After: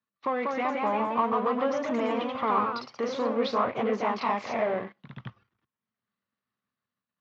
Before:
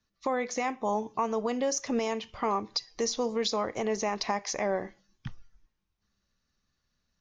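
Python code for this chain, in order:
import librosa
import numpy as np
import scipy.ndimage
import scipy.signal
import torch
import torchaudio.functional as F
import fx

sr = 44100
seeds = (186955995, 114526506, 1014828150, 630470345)

y = np.where(x < 0.0, 10.0 ** (-7.0 / 20.0) * x, x)
y = fx.low_shelf(y, sr, hz=190.0, db=5.5)
y = fx.leveller(y, sr, passes=2)
y = fx.echo_pitch(y, sr, ms=207, semitones=1, count=3, db_per_echo=-3.0)
y = fx.cabinet(y, sr, low_hz=130.0, low_slope=24, high_hz=3400.0, hz=(160.0, 320.0, 1100.0), db=(-8, -5, 7))
y = y * 10.0 ** (-3.0 / 20.0)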